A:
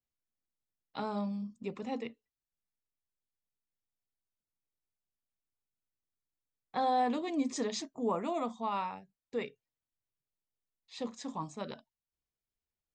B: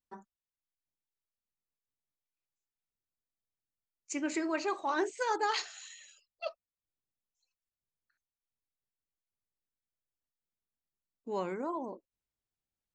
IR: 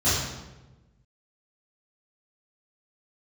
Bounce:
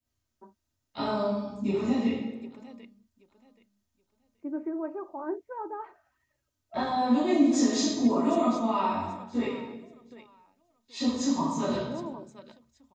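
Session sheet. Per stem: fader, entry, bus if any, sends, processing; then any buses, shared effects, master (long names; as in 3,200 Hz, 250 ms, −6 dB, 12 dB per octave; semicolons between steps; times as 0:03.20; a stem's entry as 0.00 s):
+1.5 dB, 0.00 s, send −6.5 dB, echo send −9.5 dB, downward compressor 5 to 1, threshold −36 dBFS, peak gain reduction 9.5 dB
−1.5 dB, 0.30 s, no send, no echo send, Bessel low-pass filter 740 Hz, order 4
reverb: on, RT60 1.1 s, pre-delay 3 ms
echo: repeating echo 777 ms, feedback 23%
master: comb filter 3.2 ms, depth 47%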